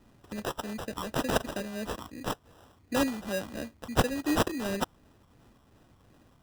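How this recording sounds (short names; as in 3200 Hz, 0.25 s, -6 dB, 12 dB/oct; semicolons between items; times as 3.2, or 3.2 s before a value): phasing stages 8, 2.8 Hz, lowest notch 520–2000 Hz; aliases and images of a low sample rate 2200 Hz, jitter 0%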